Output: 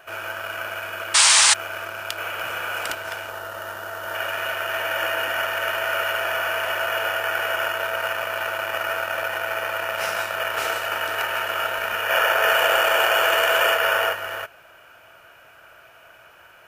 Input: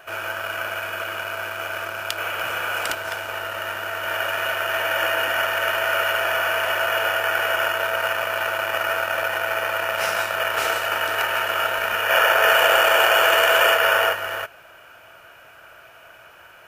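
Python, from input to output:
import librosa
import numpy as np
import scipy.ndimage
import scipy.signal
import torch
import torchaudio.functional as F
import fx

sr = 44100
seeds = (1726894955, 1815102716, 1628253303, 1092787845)

y = fx.spec_paint(x, sr, seeds[0], shape='noise', start_s=1.14, length_s=0.4, low_hz=800.0, high_hz=9700.0, level_db=-12.0)
y = fx.peak_eq(y, sr, hz=2400.0, db=-10.0, octaves=0.69, at=(3.29, 4.15))
y = y * librosa.db_to_amplitude(-2.5)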